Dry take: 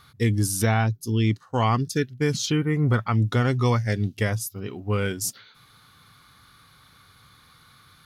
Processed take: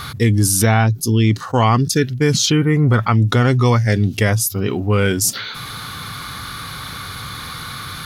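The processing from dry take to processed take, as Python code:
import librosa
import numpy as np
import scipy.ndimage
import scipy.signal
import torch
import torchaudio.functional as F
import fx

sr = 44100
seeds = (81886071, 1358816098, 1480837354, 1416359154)

y = fx.env_flatten(x, sr, amount_pct=50)
y = y * 10.0 ** (6.0 / 20.0)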